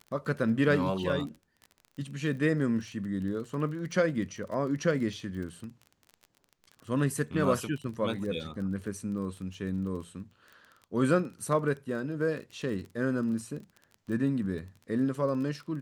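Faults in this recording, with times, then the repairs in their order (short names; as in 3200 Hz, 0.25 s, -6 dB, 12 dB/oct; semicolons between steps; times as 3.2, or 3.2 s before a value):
crackle 24/s -38 dBFS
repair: de-click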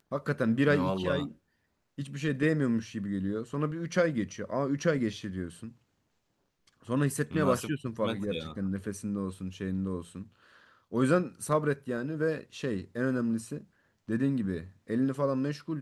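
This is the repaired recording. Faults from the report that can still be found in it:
none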